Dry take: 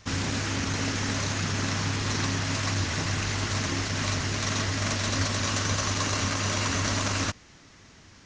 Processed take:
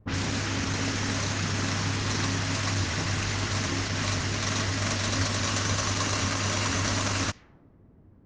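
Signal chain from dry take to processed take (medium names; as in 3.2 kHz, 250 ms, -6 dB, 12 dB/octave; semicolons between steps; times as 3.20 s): level-controlled noise filter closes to 390 Hz, open at -23.5 dBFS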